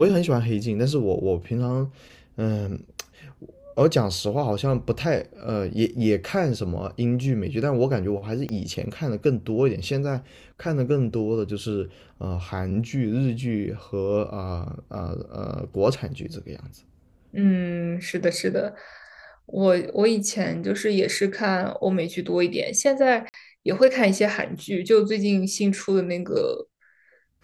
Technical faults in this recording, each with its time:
8.49 s: pop -19 dBFS
23.29–23.34 s: dropout 49 ms

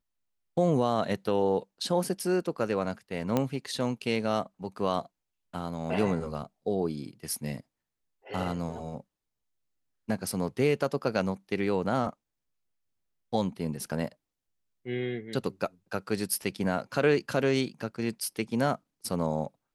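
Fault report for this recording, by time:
3.37 s: pop -13 dBFS

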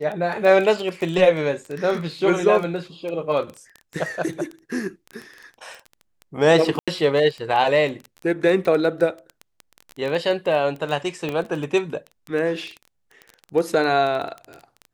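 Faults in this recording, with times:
crackle 12 per s -26 dBFS
6.79–6.88 s: dropout 86 ms
11.29 s: pop -14 dBFS

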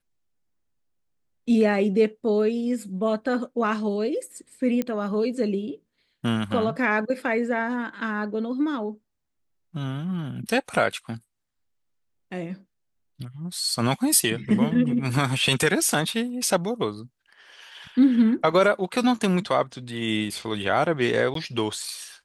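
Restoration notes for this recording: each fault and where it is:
4.82 s: pop -14 dBFS
21.34–21.35 s: dropout 13 ms

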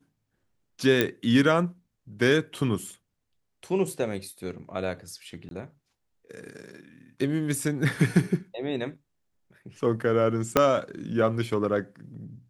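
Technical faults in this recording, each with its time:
1.01 s: pop -8 dBFS
5.49–5.51 s: dropout 22 ms
10.57 s: pop -5 dBFS

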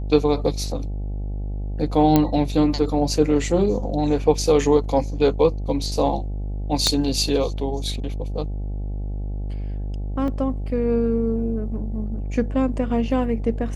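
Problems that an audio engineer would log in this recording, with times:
buzz 50 Hz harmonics 17 -27 dBFS
2.16 s: pop -4 dBFS
6.87 s: pop -5 dBFS
10.28 s: dropout 2 ms

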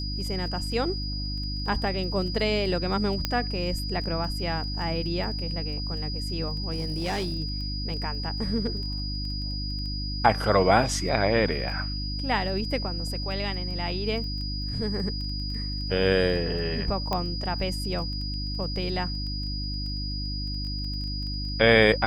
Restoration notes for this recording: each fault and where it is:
crackle 11 per s -35 dBFS
hum 50 Hz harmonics 6 -32 dBFS
whine 4.9 kHz -34 dBFS
3.25 s: pop -10 dBFS
6.71–7.34 s: clipped -24.5 dBFS
17.13 s: pop -14 dBFS

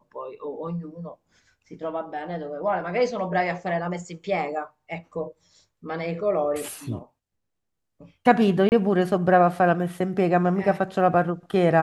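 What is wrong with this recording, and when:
8.69–8.72 s: dropout 29 ms

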